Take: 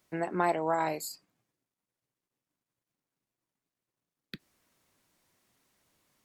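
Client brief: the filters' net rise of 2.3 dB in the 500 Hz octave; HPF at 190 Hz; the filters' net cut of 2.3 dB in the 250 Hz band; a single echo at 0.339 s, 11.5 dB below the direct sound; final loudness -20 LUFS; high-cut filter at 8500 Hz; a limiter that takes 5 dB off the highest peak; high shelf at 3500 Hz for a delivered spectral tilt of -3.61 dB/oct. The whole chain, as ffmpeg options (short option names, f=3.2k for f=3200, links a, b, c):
-af "highpass=190,lowpass=8.5k,equalizer=f=250:t=o:g=-5.5,equalizer=f=500:t=o:g=4.5,highshelf=f=3.5k:g=3.5,alimiter=limit=-18dB:level=0:latency=1,aecho=1:1:339:0.266,volume=11dB"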